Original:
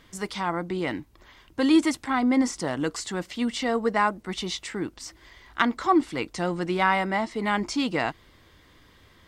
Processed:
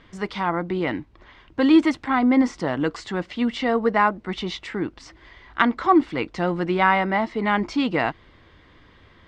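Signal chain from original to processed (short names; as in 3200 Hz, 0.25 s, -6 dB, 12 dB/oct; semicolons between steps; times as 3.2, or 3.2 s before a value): LPF 3200 Hz 12 dB/oct; gain +4 dB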